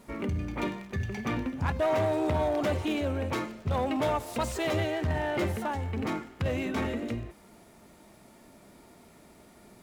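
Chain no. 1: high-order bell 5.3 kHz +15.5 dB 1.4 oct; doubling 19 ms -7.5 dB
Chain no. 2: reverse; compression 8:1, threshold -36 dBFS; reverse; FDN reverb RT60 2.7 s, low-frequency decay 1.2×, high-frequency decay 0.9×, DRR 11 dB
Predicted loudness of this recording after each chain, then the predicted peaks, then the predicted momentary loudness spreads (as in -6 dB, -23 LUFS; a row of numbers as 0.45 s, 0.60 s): -28.5 LUFS, -39.5 LUFS; -13.5 dBFS, -26.5 dBFS; 11 LU, 16 LU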